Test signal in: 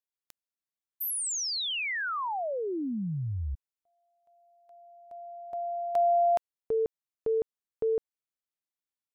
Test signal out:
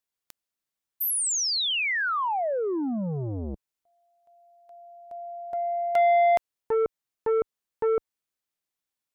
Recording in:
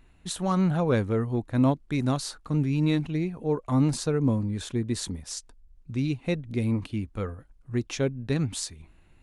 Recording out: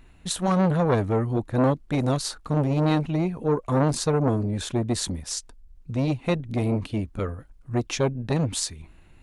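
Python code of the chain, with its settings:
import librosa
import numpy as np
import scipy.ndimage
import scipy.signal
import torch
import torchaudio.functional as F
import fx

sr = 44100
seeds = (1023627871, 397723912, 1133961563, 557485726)

y = fx.transformer_sat(x, sr, knee_hz=630.0)
y = y * librosa.db_to_amplitude(5.5)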